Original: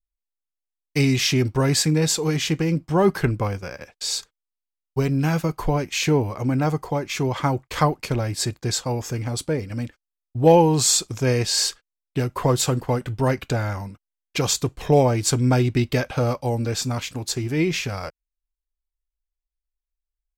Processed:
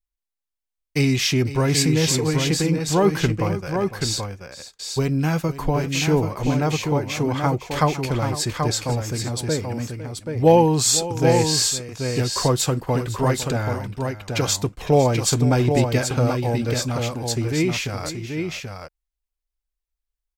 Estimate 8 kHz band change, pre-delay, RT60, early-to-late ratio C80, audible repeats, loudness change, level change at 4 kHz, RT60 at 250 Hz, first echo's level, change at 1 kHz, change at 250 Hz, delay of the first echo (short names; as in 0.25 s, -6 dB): +1.0 dB, none, none, none, 2, +1.0 dB, +1.0 dB, none, -14.5 dB, +1.0 dB, +1.0 dB, 0.506 s